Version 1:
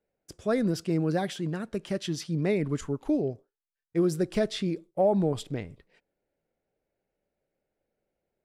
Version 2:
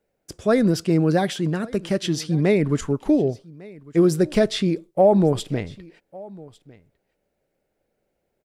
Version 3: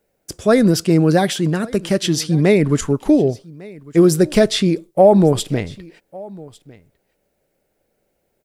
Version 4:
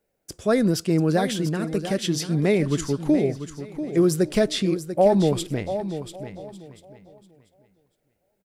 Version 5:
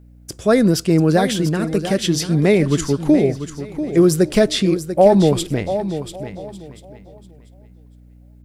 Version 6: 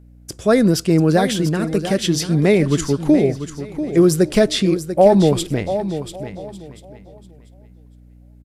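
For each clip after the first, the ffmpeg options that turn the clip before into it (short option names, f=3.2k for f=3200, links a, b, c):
-af "aecho=1:1:1152:0.075,volume=8dB"
-af "highshelf=f=6.2k:g=7.5,volume=5dB"
-af "aecho=1:1:691|1382|2073:0.299|0.0687|0.0158,volume=-7dB"
-af "aeval=exprs='val(0)+0.00316*(sin(2*PI*60*n/s)+sin(2*PI*2*60*n/s)/2+sin(2*PI*3*60*n/s)/3+sin(2*PI*4*60*n/s)/4+sin(2*PI*5*60*n/s)/5)':c=same,volume=6dB"
-af "aresample=32000,aresample=44100"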